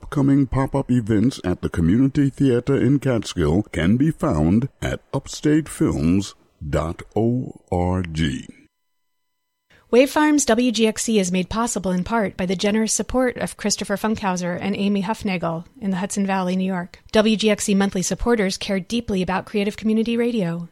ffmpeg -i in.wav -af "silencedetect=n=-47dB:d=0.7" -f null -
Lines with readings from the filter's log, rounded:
silence_start: 8.66
silence_end: 9.70 | silence_duration: 1.05